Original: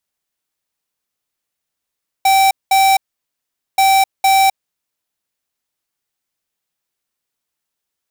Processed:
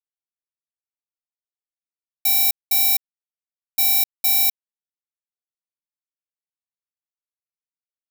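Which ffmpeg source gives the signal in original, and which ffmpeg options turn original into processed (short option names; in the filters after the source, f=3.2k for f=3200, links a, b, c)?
-f lavfi -i "aevalsrc='0.282*(2*lt(mod(775*t,1),0.5)-1)*clip(min(mod(mod(t,1.53),0.46),0.26-mod(mod(t,1.53),0.46))/0.005,0,1)*lt(mod(t,1.53),0.92)':d=3.06:s=44100"
-af "firequalizer=gain_entry='entry(340,0);entry(480,-23);entry(810,-27);entry(1900,-13);entry(4500,-3);entry(7400,-4);entry(15000,11)':delay=0.05:min_phase=1,acrusher=bits=7:mix=0:aa=0.000001"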